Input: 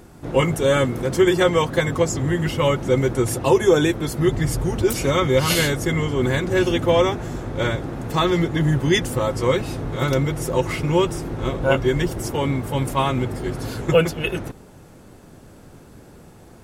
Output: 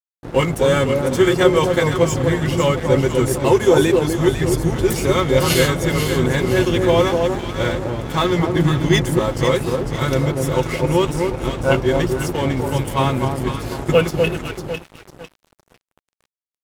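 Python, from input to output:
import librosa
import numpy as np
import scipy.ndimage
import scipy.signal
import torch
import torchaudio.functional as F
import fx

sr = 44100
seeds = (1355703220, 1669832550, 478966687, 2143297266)

y = fx.echo_alternate(x, sr, ms=250, hz=1000.0, feedback_pct=63, wet_db=-3.0)
y = np.sign(y) * np.maximum(np.abs(y) - 10.0 ** (-33.5 / 20.0), 0.0)
y = F.gain(torch.from_numpy(y), 2.0).numpy()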